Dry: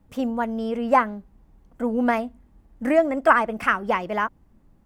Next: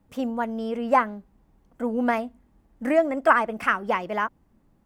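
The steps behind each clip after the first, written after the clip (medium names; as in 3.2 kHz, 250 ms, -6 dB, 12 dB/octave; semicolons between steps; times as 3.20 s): bass shelf 97 Hz -7.5 dB; trim -1.5 dB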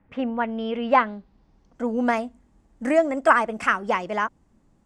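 low-pass sweep 2 kHz -> 7.6 kHz, 0.00–2.16 s; trim +1 dB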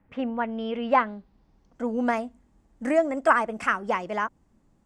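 dynamic bell 3.7 kHz, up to -3 dB, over -36 dBFS, Q 0.94; trim -2.5 dB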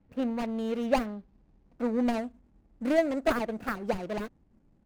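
median filter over 41 samples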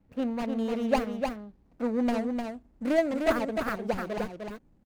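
delay 303 ms -5 dB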